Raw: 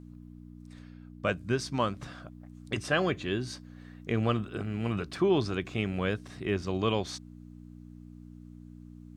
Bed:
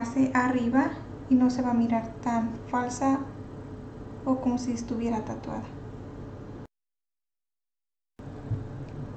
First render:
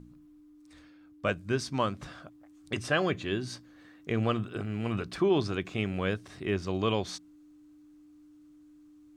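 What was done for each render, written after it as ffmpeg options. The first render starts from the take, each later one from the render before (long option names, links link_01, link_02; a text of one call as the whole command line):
ffmpeg -i in.wav -af "bandreject=frequency=60:width_type=h:width=4,bandreject=frequency=120:width_type=h:width=4,bandreject=frequency=180:width_type=h:width=4,bandreject=frequency=240:width_type=h:width=4" out.wav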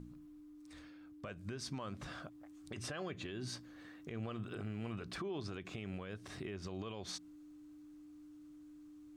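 ffmpeg -i in.wav -af "acompressor=threshold=-32dB:ratio=6,alimiter=level_in=10dB:limit=-24dB:level=0:latency=1:release=115,volume=-10dB" out.wav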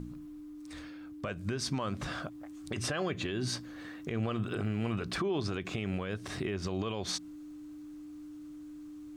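ffmpeg -i in.wav -af "volume=9.5dB" out.wav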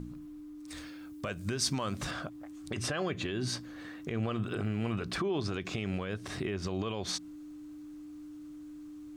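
ffmpeg -i in.wav -filter_complex "[0:a]asettb=1/sr,asplit=3[link_01][link_02][link_03];[link_01]atrim=end=0.684[link_04];[link_02]atrim=start=0.68:end=2.11,asetpts=PTS-STARTPTS,afade=type=in:duration=0.004:curve=qsin,afade=type=out:start_time=1.426:duration=0.004:curve=qsin,highshelf=frequency=4800:gain=10.5[link_05];[link_03]atrim=start=2.106[link_06];[link_04][link_05]acrossfade=duration=0.004:curve1=hsin:curve2=qsin[link_07];[link_07][link_06]acrossfade=duration=0.004:curve1=qsin:curve2=hsin,asettb=1/sr,asplit=3[link_08][link_09][link_10];[link_08]atrim=end=5.544[link_11];[link_09]atrim=start=5.54:end=6.05,asetpts=PTS-STARTPTS,afade=type=in:duration=0.004:curve=qsin,afade=type=out:start_time=0.506:duration=0.004:curve=qsin,equalizer=frequency=5200:width_type=o:width=0.77:gain=5.5[link_12];[link_10]atrim=start=6.046[link_13];[link_11][link_12]acrossfade=duration=0.004:curve1=hsin:curve2=qsin[link_14];[link_14][link_13]acrossfade=duration=0.004:curve1=qsin:curve2=hsin" out.wav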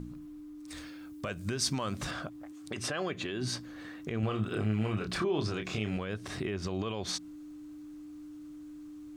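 ffmpeg -i in.wav -filter_complex "[0:a]asettb=1/sr,asplit=3[link_01][link_02][link_03];[link_01]atrim=end=2.524[link_04];[link_02]atrim=start=2.52:end=3.41,asetpts=PTS-STARTPTS,afade=type=in:duration=0.004:curve=qsin,afade=type=out:start_time=0.886:duration=0.004:curve=qsin,highpass=frequency=190:poles=1[link_05];[link_03]atrim=start=3.406[link_06];[link_04][link_05]acrossfade=duration=0.004:curve1=hsin:curve2=qsin[link_07];[link_07][link_06]acrossfade=duration=0.004:curve1=qsin:curve2=hsin,asettb=1/sr,asplit=3[link_08][link_09][link_10];[link_08]atrim=end=4.204[link_11];[link_09]atrim=start=4.2:end=5.97,asetpts=PTS-STARTPTS,afade=type=in:duration=0.004:curve=qsin,afade=type=out:start_time=1.766:duration=0.004:curve=qsin,asplit=2[link_12][link_13];[link_13]adelay=28,volume=-5dB[link_14];[link_12][link_14]amix=inputs=2:normalize=0,atrim=end_sample=78057[link_15];[link_10]atrim=start=5.966[link_16];[link_11][link_15]acrossfade=duration=0.004:curve1=hsin:curve2=qsin[link_17];[link_17][link_16]acrossfade=duration=0.004:curve1=qsin:curve2=hsin" out.wav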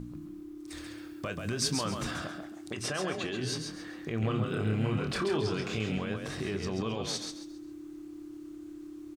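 ffmpeg -i in.wav -filter_complex "[0:a]asplit=2[link_01][link_02];[link_02]adelay=26,volume=-12dB[link_03];[link_01][link_03]amix=inputs=2:normalize=0,asplit=5[link_04][link_05][link_06][link_07][link_08];[link_05]adelay=135,afreqshift=34,volume=-5.5dB[link_09];[link_06]adelay=270,afreqshift=68,volume=-16dB[link_10];[link_07]adelay=405,afreqshift=102,volume=-26.4dB[link_11];[link_08]adelay=540,afreqshift=136,volume=-36.9dB[link_12];[link_04][link_09][link_10][link_11][link_12]amix=inputs=5:normalize=0" out.wav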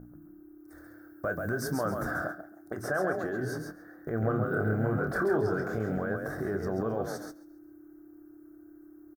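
ffmpeg -i in.wav -af "agate=range=-9dB:threshold=-39dB:ratio=16:detection=peak,firequalizer=gain_entry='entry(220,0);entry(680,9);entry(1000,-3);entry(1500,10);entry(2600,-29);entry(5400,-11);entry(7800,-11);entry(14000,13)':delay=0.05:min_phase=1" out.wav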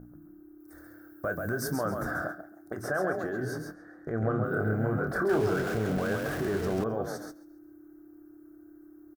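ffmpeg -i in.wav -filter_complex "[0:a]asettb=1/sr,asplit=3[link_01][link_02][link_03];[link_01]atrim=end=0.604[link_04];[link_02]atrim=start=0.6:end=1.76,asetpts=PTS-STARTPTS,afade=type=in:duration=0.004:curve=qsin,afade=type=out:start_time=1.156:duration=0.004:curve=qsin,highshelf=frequency=8300:gain=6[link_05];[link_03]atrim=start=1.756[link_06];[link_04][link_05]acrossfade=duration=0.004:curve1=hsin:curve2=qsin[link_07];[link_07][link_06]acrossfade=duration=0.004:curve1=qsin:curve2=hsin,asettb=1/sr,asplit=3[link_08][link_09][link_10];[link_08]atrim=end=3.744[link_11];[link_09]atrim=start=3.74:end=4.44,asetpts=PTS-STARTPTS,afade=type=in:duration=0.004:curve=qsin,afade=type=out:start_time=0.696:duration=0.004:curve=qsin,lowpass=8900[link_12];[link_10]atrim=start=4.436[link_13];[link_11][link_12]acrossfade=duration=0.004:curve1=hsin:curve2=qsin[link_14];[link_14][link_13]acrossfade=duration=0.004:curve1=qsin:curve2=hsin,asettb=1/sr,asplit=3[link_15][link_16][link_17];[link_15]atrim=end=5.294[link_18];[link_16]atrim=start=5.29:end=6.84,asetpts=PTS-STARTPTS,afade=type=in:duration=0.004:curve=qsin,afade=type=out:start_time=1.546:duration=0.004:curve=qsin,aeval=exprs='val(0)+0.5*0.02*sgn(val(0))':channel_layout=same[link_19];[link_17]atrim=start=6.836[link_20];[link_18][link_19]acrossfade=duration=0.004:curve1=hsin:curve2=qsin[link_21];[link_21][link_20]acrossfade=duration=0.004:curve1=qsin:curve2=hsin" out.wav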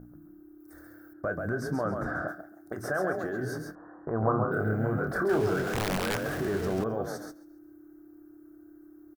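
ffmpeg -i in.wav -filter_complex "[0:a]asettb=1/sr,asplit=3[link_01][link_02][link_03];[link_01]atrim=end=1.134[link_04];[link_02]atrim=start=1.13:end=2.28,asetpts=PTS-STARTPTS,afade=type=in:duration=0.004:curve=qsin,afade=type=out:start_time=1.146:duration=0.004:curve=qsin,aemphasis=mode=reproduction:type=75fm[link_05];[link_03]atrim=start=2.276[link_06];[link_04][link_05]acrossfade=duration=0.004:curve1=hsin:curve2=qsin[link_07];[link_07][link_06]acrossfade=duration=0.004:curve1=qsin:curve2=hsin,asettb=1/sr,asplit=3[link_08][link_09][link_10];[link_08]atrim=end=3.754[link_11];[link_09]atrim=start=3.75:end=4.52,asetpts=PTS-STARTPTS,afade=type=in:duration=0.004:curve=qsin,afade=type=out:start_time=0.766:duration=0.004:curve=qsin,lowpass=frequency=1000:width_type=q:width=6.7[link_12];[link_10]atrim=start=4.516[link_13];[link_11][link_12]acrossfade=duration=0.004:curve1=hsin:curve2=qsin[link_14];[link_14][link_13]acrossfade=duration=0.004:curve1=qsin:curve2=hsin,asettb=1/sr,asplit=3[link_15][link_16][link_17];[link_15]atrim=end=5.634[link_18];[link_16]atrim=start=5.63:end=6.24,asetpts=PTS-STARTPTS,afade=type=in:duration=0.004:curve=qsin,afade=type=out:start_time=0.606:duration=0.004:curve=qsin,aeval=exprs='(mod(14.1*val(0)+1,2)-1)/14.1':channel_layout=same[link_19];[link_17]atrim=start=6.236[link_20];[link_18][link_19]acrossfade=duration=0.004:curve1=hsin:curve2=qsin[link_21];[link_21][link_20]acrossfade=duration=0.004:curve1=qsin:curve2=hsin" out.wav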